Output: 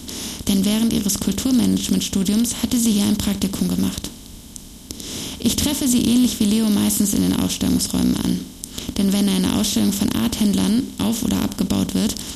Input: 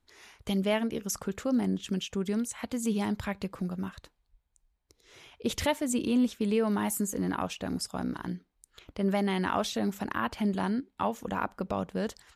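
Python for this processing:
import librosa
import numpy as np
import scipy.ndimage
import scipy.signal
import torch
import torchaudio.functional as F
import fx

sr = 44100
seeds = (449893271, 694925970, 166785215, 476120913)

y = fx.bin_compress(x, sr, power=0.4)
y = fx.band_shelf(y, sr, hz=1000.0, db=-15.5, octaves=2.8)
y = y * librosa.db_to_amplitude(8.5)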